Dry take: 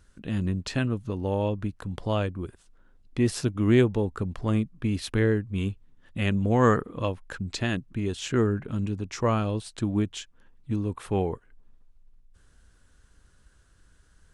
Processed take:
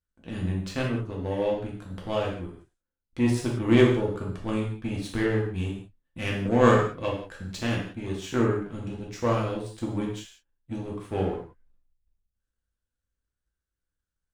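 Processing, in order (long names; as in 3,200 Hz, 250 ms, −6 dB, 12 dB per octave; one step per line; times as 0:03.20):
noise gate −51 dBFS, range −10 dB
power curve on the samples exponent 1.4
reverb whose tail is shaped and stops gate 210 ms falling, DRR −3 dB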